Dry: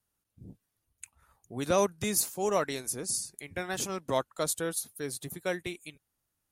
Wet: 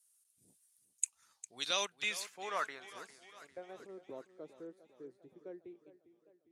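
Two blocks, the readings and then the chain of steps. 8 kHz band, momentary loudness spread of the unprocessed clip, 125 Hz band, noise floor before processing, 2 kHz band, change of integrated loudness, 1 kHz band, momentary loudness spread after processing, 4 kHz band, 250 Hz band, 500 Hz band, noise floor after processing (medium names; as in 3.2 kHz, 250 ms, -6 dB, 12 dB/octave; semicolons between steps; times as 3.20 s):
-10.0 dB, 17 LU, -25.0 dB, -83 dBFS, -3.5 dB, -8.5 dB, -8.5 dB, 20 LU, -1.0 dB, -17.5 dB, -15.0 dB, -77 dBFS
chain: differentiator; low-pass sweep 9.2 kHz -> 370 Hz, 0.82–4.01 s; modulated delay 403 ms, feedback 56%, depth 81 cents, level -15.5 dB; trim +7 dB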